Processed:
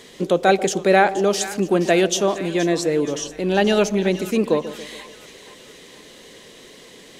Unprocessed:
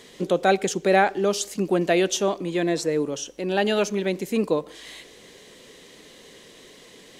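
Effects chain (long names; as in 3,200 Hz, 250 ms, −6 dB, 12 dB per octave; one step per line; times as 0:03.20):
0:03.20–0:04.22: low-shelf EQ 140 Hz +10 dB
echo with a time of its own for lows and highs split 920 Hz, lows 139 ms, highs 474 ms, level −13.5 dB
level +3.5 dB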